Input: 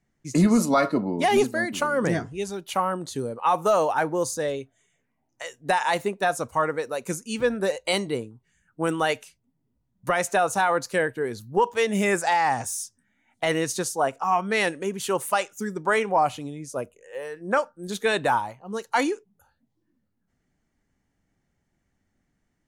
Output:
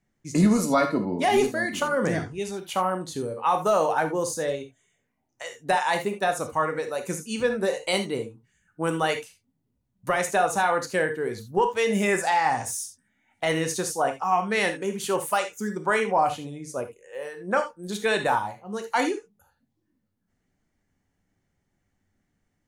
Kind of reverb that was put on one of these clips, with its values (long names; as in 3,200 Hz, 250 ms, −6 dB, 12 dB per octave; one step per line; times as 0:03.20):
reverb whose tail is shaped and stops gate 100 ms flat, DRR 6 dB
level −1.5 dB